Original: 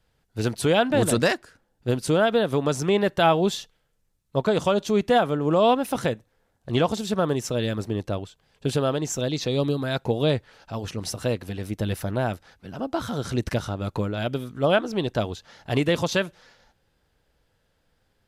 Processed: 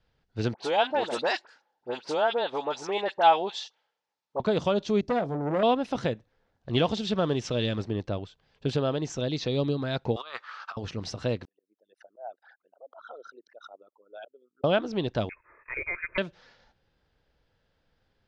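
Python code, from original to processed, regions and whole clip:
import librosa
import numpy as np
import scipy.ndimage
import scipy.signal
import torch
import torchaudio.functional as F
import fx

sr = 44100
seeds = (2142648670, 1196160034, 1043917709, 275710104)

y = fx.chain(x, sr, fx.highpass(hz=530.0, slope=12),
    fx.peak_eq(hz=860.0, db=10.5, octaves=0.32),
    fx.dispersion(late='highs', ms=51.0, hz=1800.0), at=(0.54, 4.4))
y = fx.chain(y, sr, fx.band_shelf(hz=1800.0, db=-14.0, octaves=2.3),
    fx.doubler(ms=21.0, db=-11.0),
    fx.transformer_sat(knee_hz=920.0), at=(5.01, 5.63))
y = fx.chain(y, sr, fx.law_mismatch(coded='mu'),
    fx.peak_eq(hz=3100.0, db=5.5, octaves=0.81), at=(6.76, 7.82))
y = fx.chain(y, sr, fx.highpass_res(hz=1200.0, q=9.6),
    fx.over_compress(threshold_db=-36.0, ratio=-1.0), at=(10.16, 10.77))
y = fx.chain(y, sr, fx.envelope_sharpen(power=3.0),
    fx.highpass(hz=680.0, slope=24),
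    fx.auto_swell(attack_ms=213.0), at=(11.45, 14.64))
y = fx.chain(y, sr, fx.freq_invert(carrier_hz=2600),
    fx.fixed_phaser(hz=780.0, stages=6), at=(15.29, 16.18))
y = scipy.signal.sosfilt(scipy.signal.butter(4, 5500.0, 'lowpass', fs=sr, output='sos'), y)
y = fx.dynamic_eq(y, sr, hz=1400.0, q=0.94, threshold_db=-33.0, ratio=4.0, max_db=-3)
y = y * 10.0 ** (-3.0 / 20.0)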